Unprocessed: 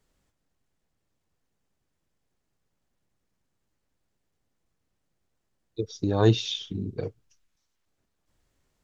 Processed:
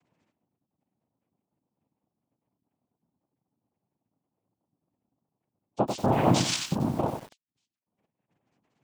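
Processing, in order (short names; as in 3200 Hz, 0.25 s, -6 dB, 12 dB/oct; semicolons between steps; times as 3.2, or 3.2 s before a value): spectral gate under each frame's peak -25 dB strong; limiter -18 dBFS, peak gain reduction 8.5 dB; noise vocoder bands 4; air absorption 58 m; lo-fi delay 93 ms, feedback 35%, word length 8-bit, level -6 dB; gain +5 dB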